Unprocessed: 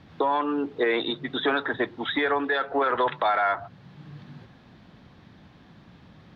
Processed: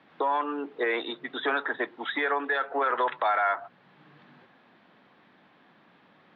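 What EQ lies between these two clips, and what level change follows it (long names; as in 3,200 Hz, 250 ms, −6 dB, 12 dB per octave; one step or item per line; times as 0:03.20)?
three-way crossover with the lows and the highs turned down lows −18 dB, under 180 Hz, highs −22 dB, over 3,300 Hz
spectral tilt +3.5 dB per octave
high-shelf EQ 2,100 Hz −8 dB
0.0 dB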